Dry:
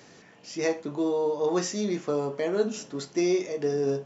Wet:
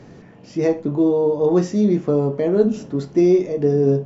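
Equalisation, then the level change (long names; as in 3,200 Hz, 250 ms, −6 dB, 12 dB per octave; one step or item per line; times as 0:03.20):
spectral tilt −4 dB per octave
dynamic equaliser 1,300 Hz, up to −3 dB, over −35 dBFS, Q 0.78
+4.5 dB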